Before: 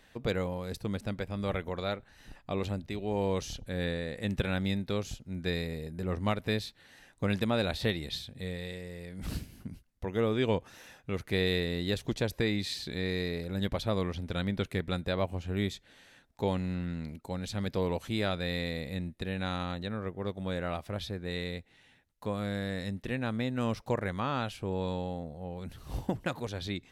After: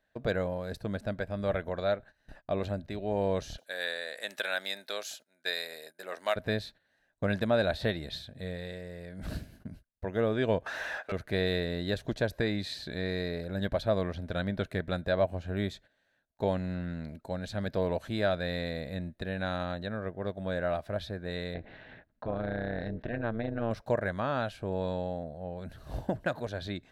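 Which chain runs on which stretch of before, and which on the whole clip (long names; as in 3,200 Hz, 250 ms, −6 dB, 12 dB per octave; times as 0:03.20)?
0:03.58–0:06.36: high-pass filter 430 Hz + spectral tilt +4 dB per octave
0:10.66–0:11.12: high-pass filter 620 Hz + mid-hump overdrive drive 30 dB, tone 2,100 Hz, clips at −26 dBFS
0:21.54–0:23.71: high-frequency loss of the air 310 metres + amplitude modulation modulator 230 Hz, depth 65% + envelope flattener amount 50%
whole clip: tilt shelving filter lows +3 dB, about 1,400 Hz; noise gate −48 dBFS, range −17 dB; thirty-one-band graphic EQ 630 Hz +12 dB, 1,600 Hz +11 dB, 4,000 Hz +5 dB; level −4 dB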